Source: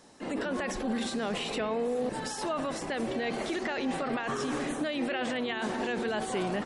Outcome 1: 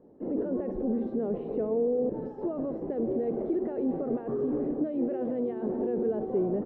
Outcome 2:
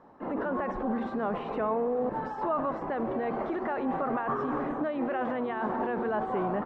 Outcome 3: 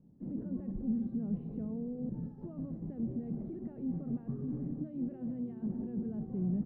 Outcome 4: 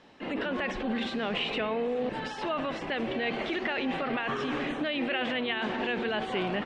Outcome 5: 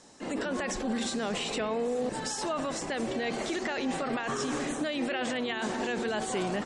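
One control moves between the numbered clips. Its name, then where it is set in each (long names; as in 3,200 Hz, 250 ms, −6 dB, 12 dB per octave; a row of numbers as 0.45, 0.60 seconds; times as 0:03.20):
low-pass with resonance, frequency: 430, 1,100, 170, 2,900, 7,600 Hertz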